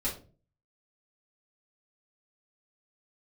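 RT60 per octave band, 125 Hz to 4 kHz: 0.60 s, 0.55 s, 0.45 s, 0.30 s, 0.25 s, 0.25 s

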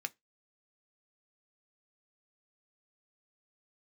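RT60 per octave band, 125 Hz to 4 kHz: 0.20 s, 0.20 s, 0.20 s, 0.15 s, 0.20 s, 0.15 s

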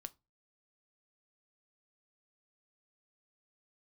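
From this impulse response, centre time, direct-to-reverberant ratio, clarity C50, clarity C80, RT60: 2 ms, 11.5 dB, 24.5 dB, 33.0 dB, 0.25 s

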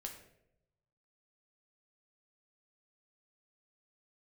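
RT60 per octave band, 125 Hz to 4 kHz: 1.5 s, 0.95 s, 1.0 s, 0.65 s, 0.65 s, 0.50 s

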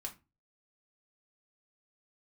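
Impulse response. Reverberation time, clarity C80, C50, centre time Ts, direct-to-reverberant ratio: 0.25 s, 22.0 dB, 14.5 dB, 10 ms, 0.5 dB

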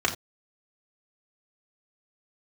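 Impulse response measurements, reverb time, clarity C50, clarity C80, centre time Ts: no single decay rate, 12.0 dB, 16.0 dB, 14 ms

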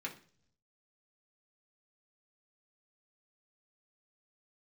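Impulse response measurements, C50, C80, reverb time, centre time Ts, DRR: 12.5 dB, 17.5 dB, 0.50 s, 12 ms, -2.5 dB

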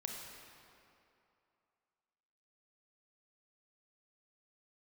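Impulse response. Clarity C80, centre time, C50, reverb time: 2.5 dB, 99 ms, 1.5 dB, 2.7 s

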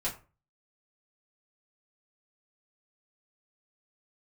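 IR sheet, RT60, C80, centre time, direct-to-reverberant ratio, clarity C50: 0.35 s, 16.5 dB, 19 ms, -7.5 dB, 11.5 dB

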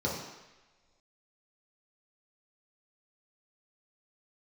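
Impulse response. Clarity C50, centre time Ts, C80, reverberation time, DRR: 2.5 dB, 54 ms, 5.5 dB, no single decay rate, -5.5 dB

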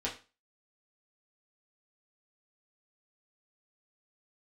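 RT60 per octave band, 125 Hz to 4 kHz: 0.30 s, 0.35 s, 0.30 s, 0.30 s, 0.30 s, 0.30 s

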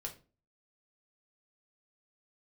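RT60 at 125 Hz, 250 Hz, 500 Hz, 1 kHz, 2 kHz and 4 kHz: 0.50 s, 0.45 s, 0.40 s, 0.30 s, 0.30 s, 0.25 s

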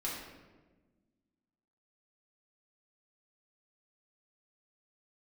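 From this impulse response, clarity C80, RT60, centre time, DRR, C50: 4.0 dB, 1.3 s, 63 ms, -6.0 dB, 1.5 dB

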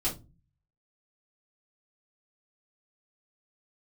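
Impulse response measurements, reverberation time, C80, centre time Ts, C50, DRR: 0.25 s, 20.5 dB, 22 ms, 11.5 dB, -9.0 dB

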